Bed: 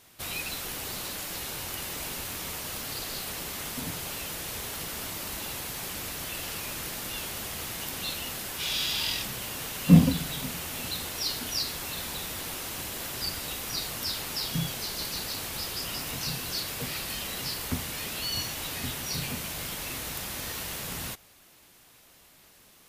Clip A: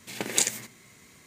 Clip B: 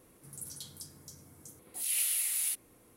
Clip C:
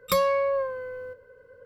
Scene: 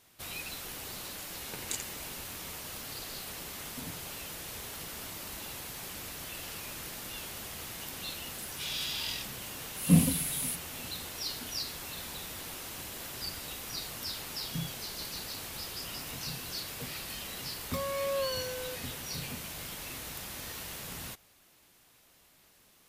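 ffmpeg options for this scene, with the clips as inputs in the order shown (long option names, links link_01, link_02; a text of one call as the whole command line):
ffmpeg -i bed.wav -i cue0.wav -i cue1.wav -i cue2.wav -filter_complex "[0:a]volume=-6dB[link_01];[3:a]dynaudnorm=framelen=150:gausssize=5:maxgain=11.5dB[link_02];[1:a]atrim=end=1.26,asetpts=PTS-STARTPTS,volume=-13.5dB,afade=type=in:duration=0.004:curve=hsin,afade=type=out:start_time=1.256:duration=0.004:curve=hsin,adelay=1330[link_03];[2:a]atrim=end=2.96,asetpts=PTS-STARTPTS,volume=-3dB,afade=type=in:duration=0.004:curve=hsin,afade=type=out:start_time=2.956:duration=0.004:curve=hsin,adelay=8010[link_04];[link_02]atrim=end=1.65,asetpts=PTS-STARTPTS,volume=-15dB,afade=type=in:duration=0.004:curve=hsin,afade=type=out:start_time=1.646:duration=0.004:curve=hsin,adelay=17620[link_05];[link_01][link_03][link_04][link_05]amix=inputs=4:normalize=0" out.wav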